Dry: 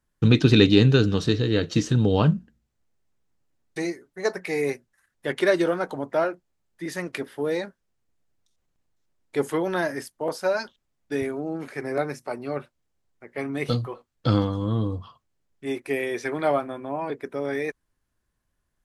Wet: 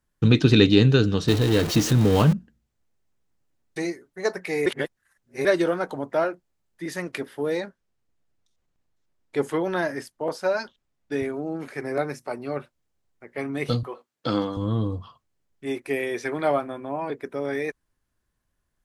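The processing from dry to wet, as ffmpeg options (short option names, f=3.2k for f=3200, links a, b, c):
-filter_complex "[0:a]asettb=1/sr,asplit=3[a][b][c];[a]atrim=end=1.284[d];[b]atrim=start=1.28:end=2.33,asetpts=PTS-STARTPTS,afade=t=in:d=0.004:c=qsin,afade=t=out:st=1.046:d=0.004:c=qsin,aeval=exprs='val(0)+0.5*0.0631*sgn(val(0))':c=same[e];[c]atrim=start=2.326[f];[d][e]acrossfade=d=0.004:c1=hsin:c2=qsin[g];[g][f]acrossfade=d=0.004:c1=qsin:c2=hsin,asettb=1/sr,asplit=3[h][i][j];[h]atrim=end=7.604[k];[i]atrim=start=7.6:end=11.34,asetpts=PTS-STARTPTS,afade=t=in:d=0.004:c=qsin,afade=t=out:st=3.736:d=0.004:c=qsin,highshelf=f=9.6k:g=-9[l];[j]atrim=start=11.336[m];[k][l]acrossfade=d=0.004:c1=hsin:c2=qsin[n];[n][m]acrossfade=d=0.004:c1=qsin:c2=hsin,asettb=1/sr,asplit=3[o][p][q];[o]atrim=end=13.834[r];[p]atrim=start=13.83:end=14.57,asetpts=PTS-STARTPTS,afade=t=in:d=0.004:c=qsin,afade=t=out:st=0.736:d=0.004:c=qsin,highpass=230[s];[q]atrim=start=14.566[t];[r][s]acrossfade=d=0.004:c1=hsin:c2=qsin[u];[u][t]acrossfade=d=0.004:c1=qsin:c2=hsin,asplit=3[v][w][x];[v]atrim=end=4.662[y];[w]atrim=start=4.658:end=5.452,asetpts=PTS-STARTPTS,areverse[z];[x]atrim=start=5.448[aa];[y][z]acrossfade=d=0.004:c1=hsin:c2=hsin[ab];[ab][aa]acrossfade=d=0.004:c1=hsin:c2=hsin"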